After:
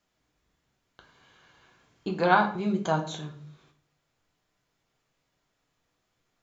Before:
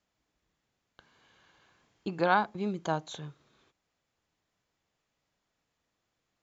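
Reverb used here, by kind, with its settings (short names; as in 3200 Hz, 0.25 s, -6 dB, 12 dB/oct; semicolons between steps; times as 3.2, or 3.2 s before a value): shoebox room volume 50 m³, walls mixed, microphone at 0.47 m; gain +2.5 dB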